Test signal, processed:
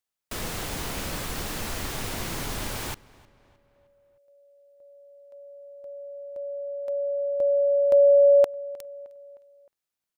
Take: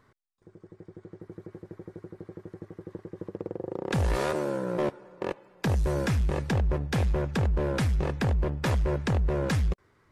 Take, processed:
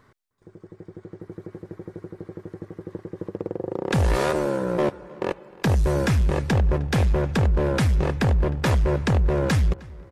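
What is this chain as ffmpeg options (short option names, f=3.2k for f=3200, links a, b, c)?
-filter_complex "[0:a]asplit=2[a][b];[b]adelay=309,lowpass=f=3.6k:p=1,volume=-22dB,asplit=2[c][d];[d]adelay=309,lowpass=f=3.6k:p=1,volume=0.52,asplit=2[e][f];[f]adelay=309,lowpass=f=3.6k:p=1,volume=0.52,asplit=2[g][h];[h]adelay=309,lowpass=f=3.6k:p=1,volume=0.52[i];[a][c][e][g][i]amix=inputs=5:normalize=0,volume=5.5dB"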